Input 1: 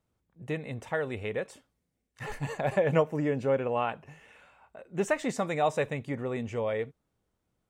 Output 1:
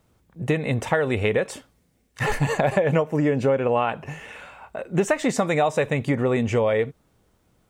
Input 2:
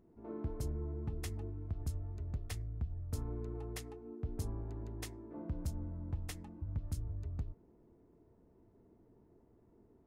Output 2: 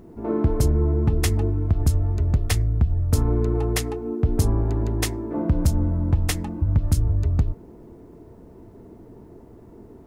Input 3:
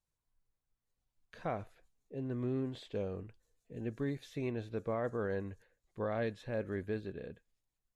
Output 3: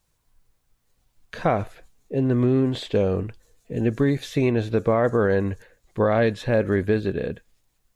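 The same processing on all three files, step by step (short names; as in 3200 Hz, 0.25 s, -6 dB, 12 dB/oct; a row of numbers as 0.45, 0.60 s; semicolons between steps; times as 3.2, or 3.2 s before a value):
compressor 6:1, threshold -33 dBFS; match loudness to -23 LUFS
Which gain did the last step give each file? +15.5, +20.5, +18.0 dB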